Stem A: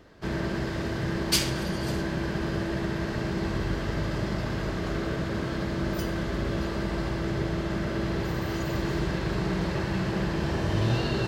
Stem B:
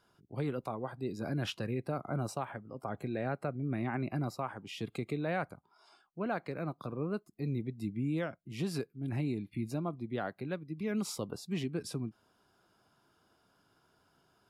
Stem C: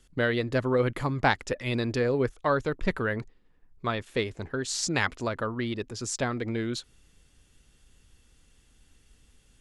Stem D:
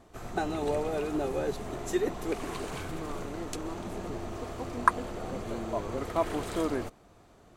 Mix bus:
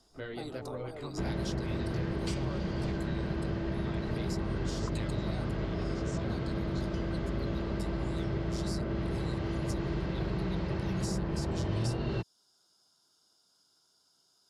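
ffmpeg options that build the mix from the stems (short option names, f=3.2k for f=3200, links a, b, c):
-filter_complex "[0:a]lowpass=f=1.2k:p=1,adelay=950,volume=2dB[a];[1:a]highpass=f=190:p=1,aexciter=amount=10.7:drive=6.1:freq=3.8k,volume=-8dB[b];[2:a]flanger=delay=17:depth=3:speed=1.4,volume=-10.5dB[c];[3:a]lowpass=1.8k,volume=-13.5dB[d];[a][b][c][d]amix=inputs=4:normalize=0,lowpass=6.5k,bandreject=f=1.7k:w=14,acrossover=split=130|720|2500[e][f][g][h];[e]acompressor=threshold=-34dB:ratio=4[i];[f]acompressor=threshold=-35dB:ratio=4[j];[g]acompressor=threshold=-48dB:ratio=4[k];[h]acompressor=threshold=-44dB:ratio=4[l];[i][j][k][l]amix=inputs=4:normalize=0"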